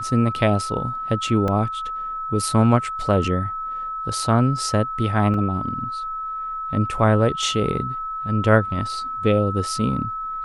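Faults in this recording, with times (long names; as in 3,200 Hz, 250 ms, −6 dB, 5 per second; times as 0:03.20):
whistle 1,300 Hz −26 dBFS
0:01.48: drop-out 2.1 ms
0:05.34: drop-out 2.8 ms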